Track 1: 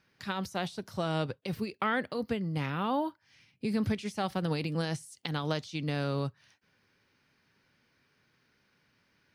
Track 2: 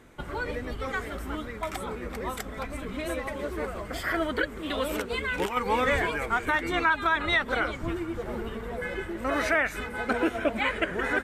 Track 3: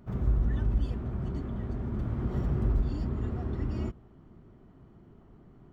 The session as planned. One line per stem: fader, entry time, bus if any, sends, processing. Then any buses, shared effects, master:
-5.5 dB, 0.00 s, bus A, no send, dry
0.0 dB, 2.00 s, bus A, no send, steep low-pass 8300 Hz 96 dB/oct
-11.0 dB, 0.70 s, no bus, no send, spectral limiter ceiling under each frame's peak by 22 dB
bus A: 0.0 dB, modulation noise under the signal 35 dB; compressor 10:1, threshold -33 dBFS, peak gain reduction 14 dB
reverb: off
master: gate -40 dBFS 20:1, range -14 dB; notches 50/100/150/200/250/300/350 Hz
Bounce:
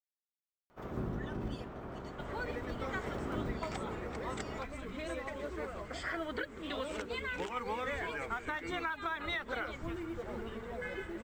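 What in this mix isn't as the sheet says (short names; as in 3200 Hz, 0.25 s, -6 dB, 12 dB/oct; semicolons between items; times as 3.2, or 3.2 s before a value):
stem 1: muted; stem 2 0.0 dB -> -7.0 dB; master: missing gate -40 dBFS 20:1, range -14 dB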